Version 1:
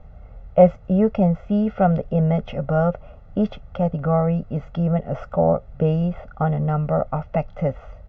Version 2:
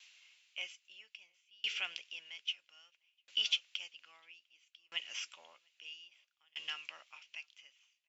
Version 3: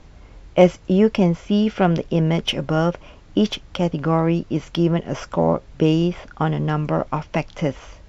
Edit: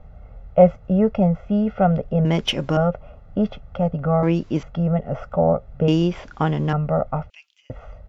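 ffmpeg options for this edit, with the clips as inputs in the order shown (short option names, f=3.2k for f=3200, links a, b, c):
-filter_complex "[2:a]asplit=3[a][b][c];[0:a]asplit=5[d][e][f][g][h];[d]atrim=end=2.252[i];[a]atrim=start=2.248:end=2.772[j];[e]atrim=start=2.768:end=4.232[k];[b]atrim=start=4.228:end=4.632[l];[f]atrim=start=4.628:end=5.882[m];[c]atrim=start=5.878:end=6.732[n];[g]atrim=start=6.728:end=7.302[o];[1:a]atrim=start=7.298:end=7.702[p];[h]atrim=start=7.698[q];[i][j]acrossfade=d=0.004:c1=hsin:c2=hsin[r];[r][k]acrossfade=d=0.004:c1=hsin:c2=hsin[s];[s][l]acrossfade=d=0.004:c1=hsin:c2=hsin[t];[t][m]acrossfade=d=0.004:c1=hsin:c2=hsin[u];[u][n]acrossfade=d=0.004:c1=hsin:c2=hsin[v];[v][o]acrossfade=d=0.004:c1=hsin:c2=hsin[w];[w][p]acrossfade=d=0.004:c1=hsin:c2=hsin[x];[x][q]acrossfade=d=0.004:c1=hsin:c2=hsin"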